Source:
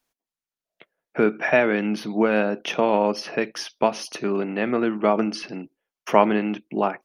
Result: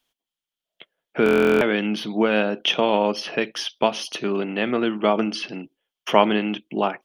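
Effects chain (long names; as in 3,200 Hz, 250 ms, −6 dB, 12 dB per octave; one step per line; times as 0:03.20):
parametric band 3,200 Hz +13.5 dB 0.41 octaves
buffer that repeats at 0:01.24, samples 1,024, times 15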